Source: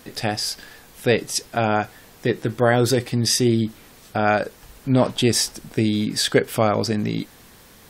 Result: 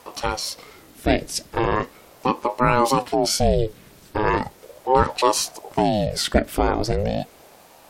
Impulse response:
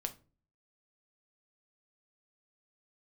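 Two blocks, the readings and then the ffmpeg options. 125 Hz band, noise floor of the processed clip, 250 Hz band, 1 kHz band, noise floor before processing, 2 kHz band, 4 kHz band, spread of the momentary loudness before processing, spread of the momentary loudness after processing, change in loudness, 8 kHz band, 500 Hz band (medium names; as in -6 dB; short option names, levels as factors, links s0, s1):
-3.5 dB, -50 dBFS, -3.5 dB, +4.5 dB, -49 dBFS, -2.5 dB, -3.0 dB, 10 LU, 10 LU, -1.0 dB, -2.5 dB, -0.5 dB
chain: -af "lowshelf=f=340:g=5,aeval=exprs='val(0)*sin(2*PI*450*n/s+450*0.65/0.38*sin(2*PI*0.38*n/s))':c=same"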